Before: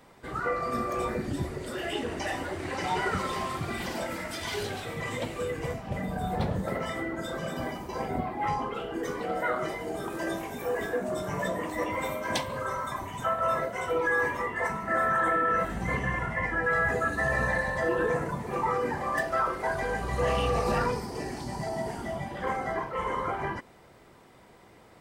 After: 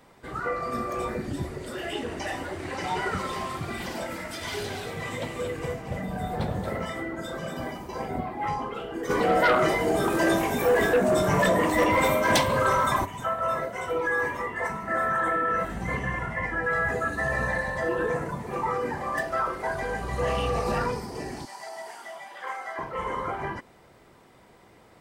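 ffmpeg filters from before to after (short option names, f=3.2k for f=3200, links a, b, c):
-filter_complex "[0:a]asettb=1/sr,asplit=3[a][b][c];[a]atrim=end=4.194[d];[b]atrim=start=4.19:end=6.85,asetpts=PTS-STARTPTS,afade=t=in:d=0.004:c=qsin,afade=t=out:st=2.656:d=0.004:c=qsin,aecho=1:1:229:0.422,atrim=end_sample=117306[e];[c]atrim=start=6.846[f];[d][e]acrossfade=d=0.004:c1=hsin:c2=qsin[g];[g][f]acrossfade=d=0.004:c1=qsin:c2=hsin,asplit=3[h][i][j];[h]afade=t=out:st=9.09:d=0.02[k];[i]aeval=exprs='0.168*sin(PI/2*2.24*val(0)/0.168)':c=same,afade=t=in:st=9.09:d=0.02,afade=t=out:st=13.04:d=0.02[l];[j]afade=t=in:st=13.04:d=0.02[m];[k][l][m]amix=inputs=3:normalize=0,asettb=1/sr,asplit=3[n][o][p];[n]atrim=end=21.454[q];[o]atrim=start=21.45:end=22.79,asetpts=PTS-STARTPTS,afade=t=in:d=0.004:c=qsin,afade=t=out:st=1.336:d=0.004:c=qsin,highpass=890[r];[p]atrim=start=22.786[s];[q][r]acrossfade=d=0.004:c1=hsin:c2=qsin[t];[t][s]acrossfade=d=0.004:c1=qsin:c2=hsin"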